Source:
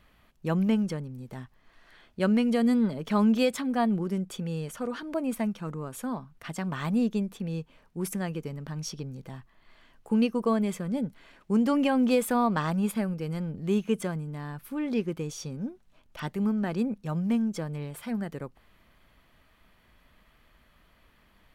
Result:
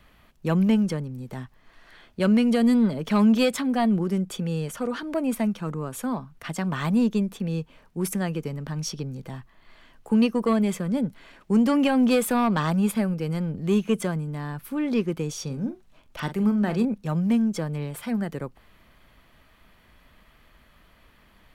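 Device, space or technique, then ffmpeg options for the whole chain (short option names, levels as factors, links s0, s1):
one-band saturation: -filter_complex "[0:a]asettb=1/sr,asplit=3[s0][s1][s2];[s0]atrim=end=15.434[s3];[s1]atrim=start=15.43:end=16.85,asetpts=PTS-STARTPTS,afade=t=in:d=0.004:c=qsin,afade=t=out:st=1.416:d=0.004:c=qsin,asplit=2[s4][s5];[s5]adelay=43,volume=0.282[s6];[s4][s6]amix=inputs=2:normalize=0,atrim=end_sample=62622[s7];[s2]atrim=start=16.846[s8];[s3][s7]acrossfade=d=0.004:c1=hsin:c2=qsin[s9];[s9][s8]acrossfade=d=0.004:c1=qsin:c2=hsin,acrossover=split=220|2100[s10][s11][s12];[s11]asoftclip=type=tanh:threshold=0.0794[s13];[s10][s13][s12]amix=inputs=3:normalize=0,volume=1.78"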